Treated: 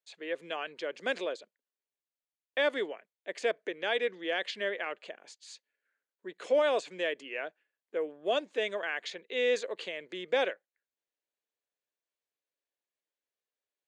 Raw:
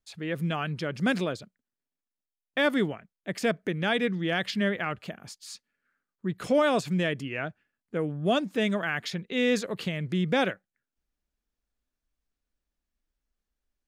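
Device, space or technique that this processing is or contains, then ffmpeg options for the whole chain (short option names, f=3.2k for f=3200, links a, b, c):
phone speaker on a table: -filter_complex "[0:a]highpass=f=390:w=0.5412,highpass=f=390:w=1.3066,equalizer=f=510:t=q:w=4:g=3,equalizer=f=780:t=q:w=4:g=-3,equalizer=f=1.3k:t=q:w=4:g=-7,equalizer=f=5.3k:t=q:w=4:g=-8,lowpass=f=7.3k:w=0.5412,lowpass=f=7.3k:w=1.3066,asettb=1/sr,asplit=3[a][b][c];[a]atrim=end=5.224[d];[b]atrim=start=5.22:end=6.31,asetpts=PTS-STARTPTS,afade=t=in:d=0.004:c=qsin,afade=t=out:st=1.086:d=0.004:c=qsin,bandreject=f=1.2k:w=7.7[e];[c]atrim=start=6.306[f];[d][e]acrossfade=d=0.004:c1=hsin:c2=qsin[g];[g][f]acrossfade=d=0.004:c1=qsin:c2=hsin,volume=-2.5dB"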